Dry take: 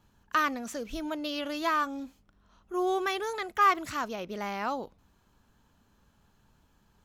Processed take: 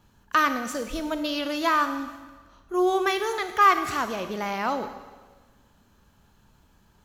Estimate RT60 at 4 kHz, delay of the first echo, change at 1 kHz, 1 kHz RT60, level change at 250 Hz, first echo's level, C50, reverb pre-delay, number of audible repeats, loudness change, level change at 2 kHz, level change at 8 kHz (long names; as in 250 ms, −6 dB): 1.3 s, no echo audible, +5.5 dB, 1.4 s, +5.5 dB, no echo audible, 10.0 dB, 30 ms, no echo audible, +5.5 dB, +5.5 dB, +6.0 dB